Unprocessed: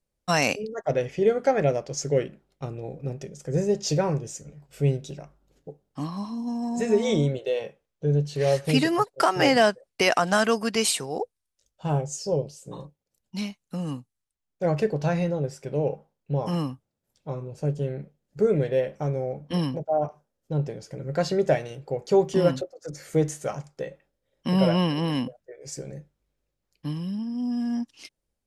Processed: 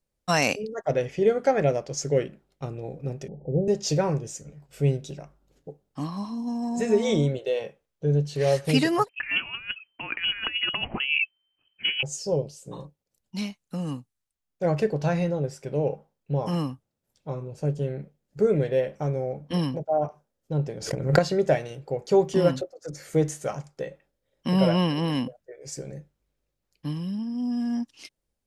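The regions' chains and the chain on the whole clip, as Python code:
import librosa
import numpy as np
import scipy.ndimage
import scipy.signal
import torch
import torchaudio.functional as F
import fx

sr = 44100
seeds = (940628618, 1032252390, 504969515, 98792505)

y = fx.chain(x, sr, fx.zero_step(step_db=-41.0),
    fx.steep_lowpass(hz=830.0, slope=96), at=(3.28, 3.68))
y = fx.chain(y, sr, fx.over_compress(threshold_db=-27.0, ratio=-0.5),
    fx.freq_invert(carrier_hz=3100), at=(9.09, 12.03))
y = fx.chain(y, sr, fx.transient(attack_db=9, sustain_db=0),
    fx.pre_swell(db_per_s=96.0), at=(20.77, 21.19))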